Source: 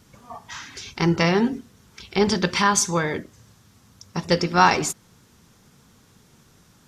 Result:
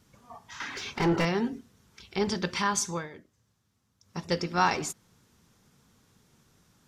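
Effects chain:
0:00.60–0:01.25: mid-hump overdrive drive 26 dB, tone 1,200 Hz, clips at −7 dBFS
0:02.91–0:04.18: duck −11 dB, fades 0.18 s
level −8.5 dB

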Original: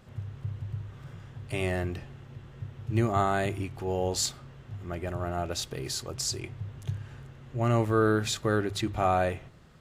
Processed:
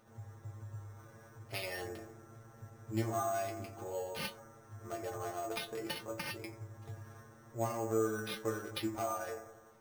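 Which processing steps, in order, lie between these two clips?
adaptive Wiener filter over 15 samples
bass and treble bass −14 dB, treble +12 dB
treble cut that deepens with the level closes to 2,600 Hz, closed at −26 dBFS
downward compressor 6 to 1, threshold −34 dBFS, peak gain reduction 12 dB
stiff-string resonator 110 Hz, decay 0.34 s, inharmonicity 0.002
bucket-brigade delay 88 ms, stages 1,024, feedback 62%, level −10 dB
bad sample-rate conversion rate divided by 6×, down none, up hold
level +10 dB

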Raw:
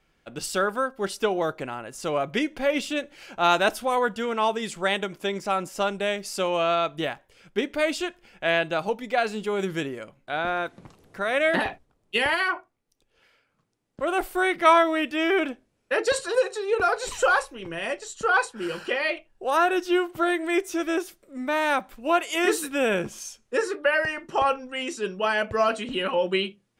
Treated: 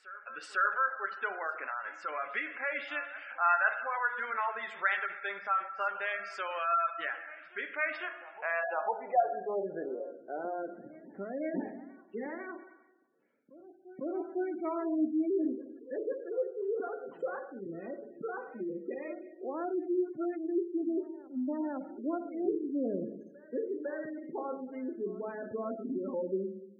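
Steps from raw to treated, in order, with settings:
high-pass filter 120 Hz 12 dB per octave
parametric band 2,000 Hz +4 dB 0.57 octaves
in parallel at +1 dB: downward compressor 8 to 1, threshold −31 dBFS, peak gain reduction 19.5 dB
on the sum: low-shelf EQ 230 Hz −2.5 dB
dense smooth reverb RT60 1.1 s, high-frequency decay 0.95×, DRR 5.5 dB
band-pass filter sweep 1,500 Hz → 270 Hz, 0:07.84–0:11.17
gate on every frequency bin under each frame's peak −20 dB strong
on a send: backwards echo 502 ms −18.5 dB
on the sum: level −4 dB

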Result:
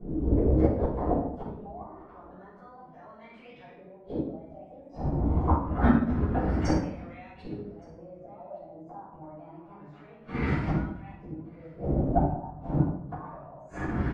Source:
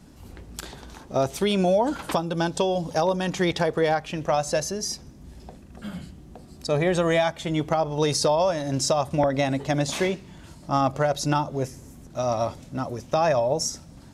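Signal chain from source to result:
pitch shifter swept by a sawtooth +6 semitones, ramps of 699 ms
brickwall limiter −21 dBFS, peak gain reduction 11 dB
auto-filter low-pass saw up 0.27 Hz 400–2,700 Hz
gate with flip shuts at −28 dBFS, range −33 dB
on a send: single-tap delay 1,169 ms −22.5 dB
on the sum: rectangular room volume 280 cubic metres, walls mixed, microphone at 5.5 metres
expander for the loud parts 1.5 to 1, over −39 dBFS
level +6.5 dB

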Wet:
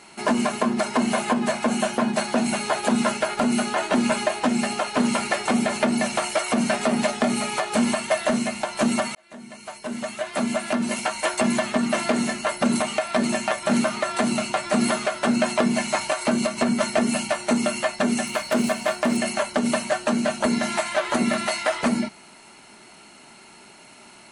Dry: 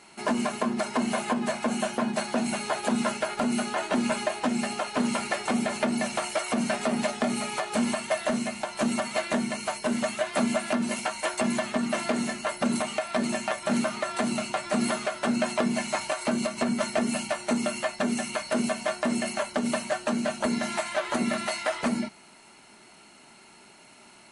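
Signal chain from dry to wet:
0:09.15–0:11.22: fade in
0:18.27–0:19.17: phase distortion by the signal itself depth 0.066 ms
level +5 dB

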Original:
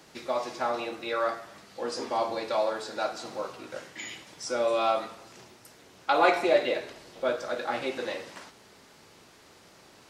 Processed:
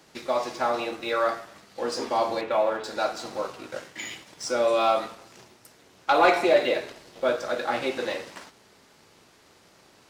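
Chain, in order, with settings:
0:02.41–0:02.84: Butterworth low-pass 3,200 Hz
leveller curve on the samples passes 1

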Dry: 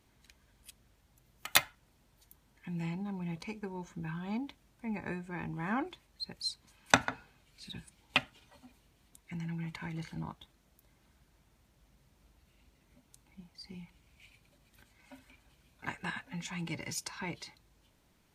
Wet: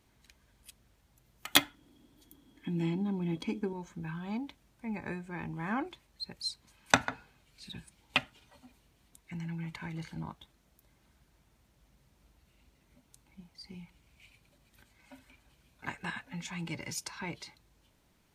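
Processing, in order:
0:01.52–0:03.73: hollow resonant body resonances 290/3,300 Hz, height 18 dB, ringing for 45 ms

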